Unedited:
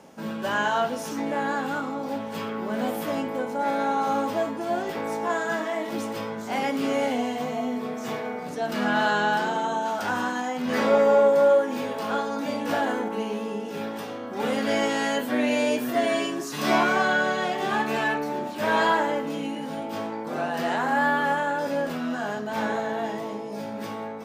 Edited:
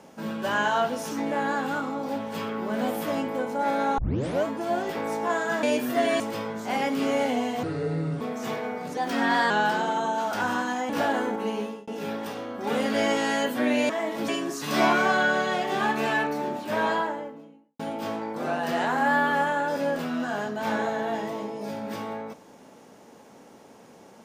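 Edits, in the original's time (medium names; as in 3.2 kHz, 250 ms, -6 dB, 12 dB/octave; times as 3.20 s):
3.98 s: tape start 0.47 s
5.63–6.02 s: swap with 15.62–16.19 s
7.45–7.82 s: speed 64%
8.58–9.18 s: speed 112%
10.57–12.62 s: delete
13.33–13.60 s: fade out
18.33–19.70 s: studio fade out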